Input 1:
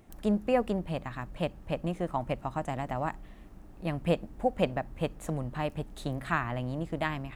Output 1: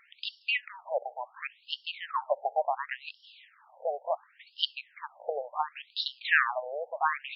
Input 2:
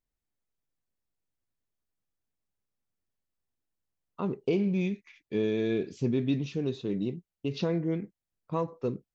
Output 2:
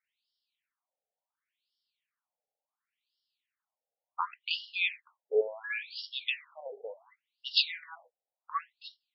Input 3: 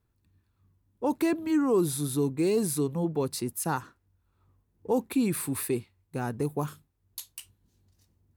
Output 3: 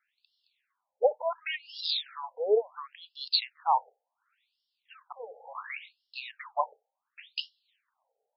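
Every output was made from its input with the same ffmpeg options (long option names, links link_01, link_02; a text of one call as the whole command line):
ffmpeg -i in.wav -af "crystalizer=i=5:c=0,afftfilt=real='re*between(b*sr/1024,590*pow(4000/590,0.5+0.5*sin(2*PI*0.7*pts/sr))/1.41,590*pow(4000/590,0.5+0.5*sin(2*PI*0.7*pts/sr))*1.41)':imag='im*between(b*sr/1024,590*pow(4000/590,0.5+0.5*sin(2*PI*0.7*pts/sr))/1.41,590*pow(4000/590,0.5+0.5*sin(2*PI*0.7*pts/sr))*1.41)':win_size=1024:overlap=0.75,volume=7dB" out.wav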